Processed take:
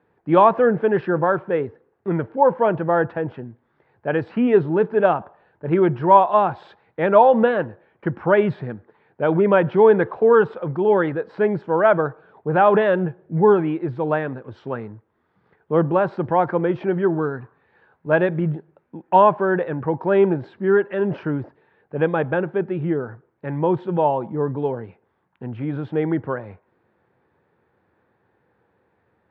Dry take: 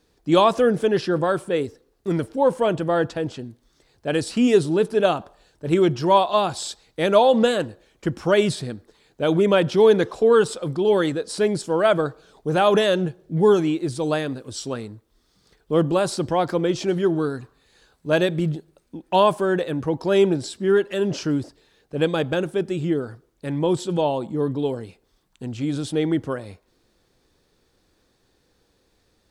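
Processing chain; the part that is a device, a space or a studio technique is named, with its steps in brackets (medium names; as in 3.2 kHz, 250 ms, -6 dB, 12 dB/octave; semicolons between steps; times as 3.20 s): bass cabinet (cabinet simulation 89–2100 Hz, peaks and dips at 280 Hz -5 dB, 890 Hz +6 dB, 1.6 kHz +3 dB); trim +1.5 dB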